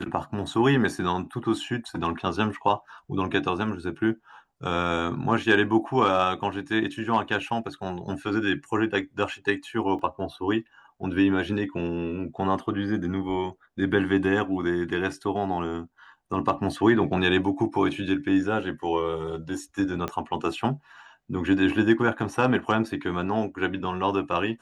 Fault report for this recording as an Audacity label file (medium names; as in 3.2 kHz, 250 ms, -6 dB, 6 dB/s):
9.990000	9.990000	dropout 2.5 ms
20.080000	20.080000	pop -16 dBFS